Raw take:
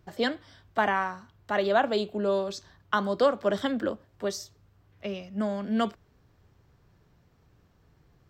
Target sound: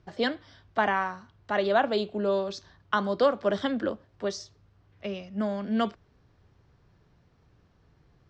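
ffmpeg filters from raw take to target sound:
ffmpeg -i in.wav -af "lowpass=frequency=6200:width=0.5412,lowpass=frequency=6200:width=1.3066" out.wav

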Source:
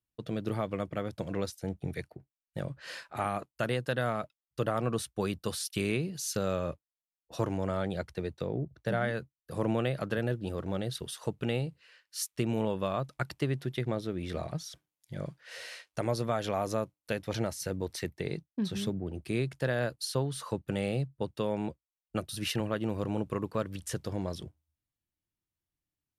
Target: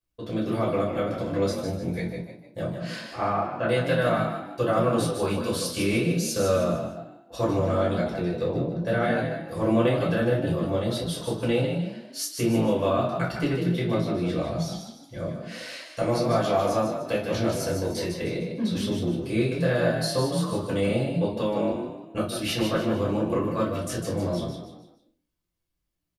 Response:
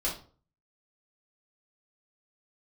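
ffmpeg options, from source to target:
-filter_complex "[0:a]asettb=1/sr,asplit=3[link_01][link_02][link_03];[link_01]atrim=end=3.034[link_04];[link_02]atrim=start=3.03:end=3.67,asetpts=PTS-STARTPTS,afade=type=in:duration=0.004:curve=qsin,afade=type=out:start_time=0.636:duration=0.004:curve=qsin,lowpass=2300[link_05];[link_03]atrim=start=3.666[link_06];[link_04][link_05]acrossfade=duration=0.004:curve1=hsin:curve2=qsin[link_07];[link_07][link_06]acrossfade=duration=0.004:curve1=qsin:curve2=hsin,asplit=5[link_08][link_09][link_10][link_11][link_12];[link_09]adelay=151,afreqshift=40,volume=-6.5dB[link_13];[link_10]adelay=302,afreqshift=80,volume=-14.9dB[link_14];[link_11]adelay=453,afreqshift=120,volume=-23.3dB[link_15];[link_12]adelay=604,afreqshift=160,volume=-31.7dB[link_16];[link_08][link_13][link_14][link_15][link_16]amix=inputs=5:normalize=0[link_17];[1:a]atrim=start_sample=2205[link_18];[link_17][link_18]afir=irnorm=-1:irlink=0"

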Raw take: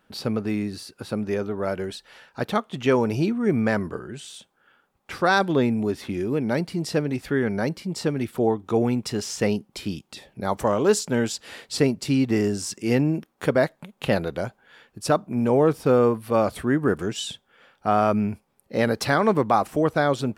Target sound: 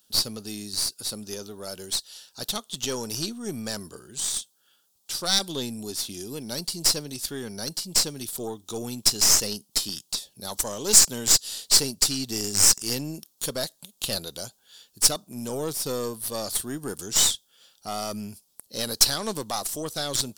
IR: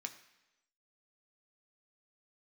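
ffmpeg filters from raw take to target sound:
-af "aexciter=amount=11.9:drive=8.4:freq=3400,aeval=exprs='2.99*(cos(1*acos(clip(val(0)/2.99,-1,1)))-cos(1*PI/2))+0.266*(cos(8*acos(clip(val(0)/2.99,-1,1)))-cos(8*PI/2))':channel_layout=same,volume=-11.5dB"

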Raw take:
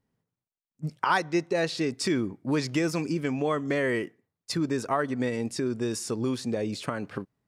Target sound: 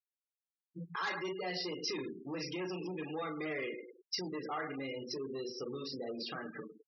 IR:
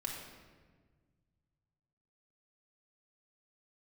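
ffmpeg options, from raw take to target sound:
-filter_complex "[0:a]acontrast=78,asplit=2[link_01][link_02];[link_02]adelay=113,lowpass=frequency=3300:poles=1,volume=-12dB,asplit=2[link_03][link_04];[link_04]adelay=113,lowpass=frequency=3300:poles=1,volume=0.39,asplit=2[link_05][link_06];[link_06]adelay=113,lowpass=frequency=3300:poles=1,volume=0.39,asplit=2[link_07][link_08];[link_08]adelay=113,lowpass=frequency=3300:poles=1,volume=0.39[link_09];[link_03][link_05][link_07][link_09]amix=inputs=4:normalize=0[link_10];[link_01][link_10]amix=inputs=2:normalize=0[link_11];[1:a]atrim=start_sample=2205,atrim=end_sample=3969,asetrate=57330,aresample=44100[link_12];[link_11][link_12]afir=irnorm=-1:irlink=0,aresample=11025,acrusher=bits=4:mode=log:mix=0:aa=0.000001,aresample=44100,lowshelf=frequency=77:gain=6.5,asoftclip=type=tanh:threshold=-19dB,alimiter=level_in=4dB:limit=-24dB:level=0:latency=1:release=464,volume=-4dB,aemphasis=mode=production:type=bsi,asetrate=48000,aresample=44100,afftfilt=real='re*gte(hypot(re,im),0.0141)':imag='im*gte(hypot(re,im),0.0141)':win_size=1024:overlap=0.75,volume=-3dB" -ar 48000 -c:a libmp3lame -b:a 80k

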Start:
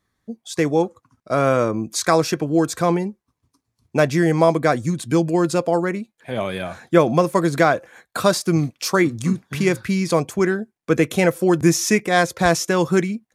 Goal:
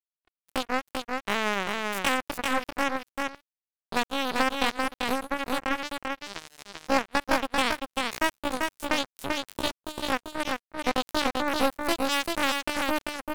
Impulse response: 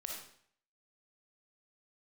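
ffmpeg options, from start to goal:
-filter_complex "[0:a]acompressor=threshold=-27dB:ratio=2,aeval=exprs='0.266*(cos(1*acos(clip(val(0)/0.266,-1,1)))-cos(1*PI/2))+0.00596*(cos(6*acos(clip(val(0)/0.266,-1,1)))-cos(6*PI/2))':channel_layout=same,acrusher=bits=2:mix=0:aa=0.5,asetrate=70004,aresample=44100,atempo=0.629961,asplit=2[link_01][link_02];[link_02]aecho=0:1:391:0.668[link_03];[link_01][link_03]amix=inputs=2:normalize=0"

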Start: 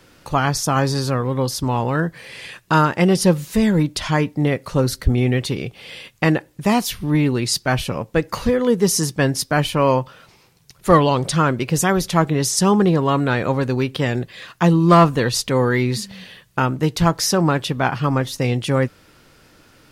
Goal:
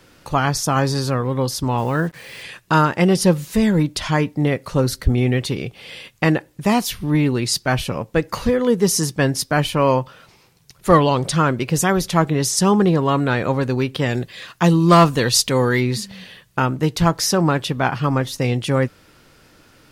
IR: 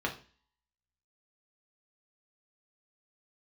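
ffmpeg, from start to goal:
-filter_complex "[0:a]asettb=1/sr,asplit=3[link_01][link_02][link_03];[link_01]atrim=end=1.784[link_04];[link_02]atrim=start=1.78:end=2.43,asetpts=PTS-STARTPTS,afade=type=in:duration=0.004:curve=qsin,afade=type=out:start_time=0.646:duration=0.004:curve=qsin,acrusher=bits=6:mix=0:aa=0.5[link_05];[link_03]atrim=start=2.426[link_06];[link_04][link_05]acrossfade=duration=0.004:curve1=hsin:curve2=qsin[link_07];[link_07][link_06]acrossfade=duration=0.004:curve1=qsin:curve2=hsin,asplit=3[link_08][link_09][link_10];[link_08]afade=type=out:start_time=14.09:duration=0.02[link_11];[link_09]adynamicequalizer=threshold=0.0316:dfrequency=2700:dqfactor=0.7:tfrequency=2700:tqfactor=0.7:attack=5:release=100:ratio=0.375:range=3.5:mode=boostabove:tftype=highshelf,afade=type=in:start_time=14.09:duration=0.02,afade=type=out:start_time=15.79:duration=0.02[link_12];[link_10]afade=type=in:start_time=15.79:duration=0.02[link_13];[link_11][link_12][link_13]amix=inputs=3:normalize=0"

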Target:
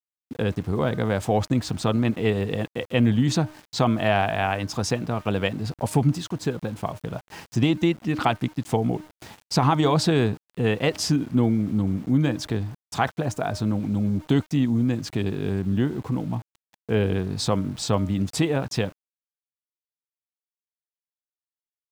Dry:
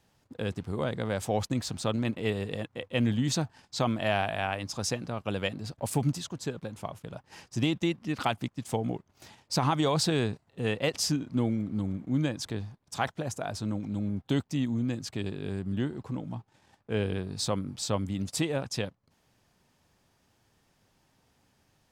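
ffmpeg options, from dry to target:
ffmpeg -i in.wav -filter_complex "[0:a]agate=range=-33dB:threshold=-57dB:ratio=3:detection=peak,highshelf=frequency=3600:gain=-9.5,bandreject=frequency=560:width=12,bandreject=frequency=307.2:width_type=h:width=4,bandreject=frequency=614.4:width_type=h:width=4,bandreject=frequency=921.6:width_type=h:width=4,bandreject=frequency=1228.8:width_type=h:width=4,bandreject=frequency=1536:width_type=h:width=4,asplit=2[link_01][link_02];[link_02]acompressor=threshold=-38dB:ratio=4,volume=-0.5dB[link_03];[link_01][link_03]amix=inputs=2:normalize=0,aeval=exprs='val(0)*gte(abs(val(0)),0.00355)':channel_layout=same,volume=5.5dB" out.wav

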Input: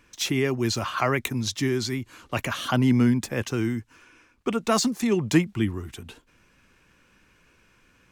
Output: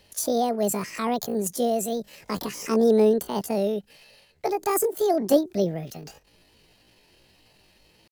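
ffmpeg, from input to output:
ffmpeg -i in.wav -filter_complex "[0:a]acrossover=split=630|3400[link_01][link_02][link_03];[link_02]acompressor=threshold=-45dB:ratio=5[link_04];[link_01][link_04][link_03]amix=inputs=3:normalize=0,asetrate=78577,aresample=44100,atempo=0.561231,volume=1.5dB" out.wav

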